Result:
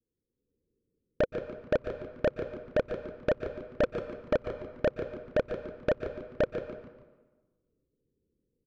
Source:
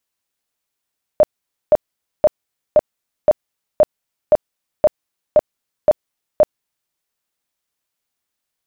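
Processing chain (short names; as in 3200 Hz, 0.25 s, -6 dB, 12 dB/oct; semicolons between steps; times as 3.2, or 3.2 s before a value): steep low-pass 510 Hz 96 dB/oct; 3.82–4.33 comb 3.8 ms, depth 88%; in parallel at +2 dB: limiter -21.5 dBFS, peak gain reduction 7.5 dB; on the sum: AGC gain up to 9 dB; soft clip -20 dBFS, distortion -4 dB; frequency-shifting echo 0.145 s, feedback 40%, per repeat -120 Hz, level -10.5 dB; on a send at -10 dB: reverb RT60 1.3 s, pre-delay 0.117 s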